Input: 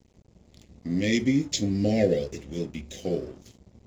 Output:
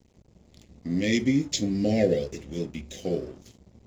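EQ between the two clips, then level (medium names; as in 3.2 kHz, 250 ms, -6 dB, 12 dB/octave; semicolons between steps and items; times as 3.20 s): hum notches 50/100 Hz; 0.0 dB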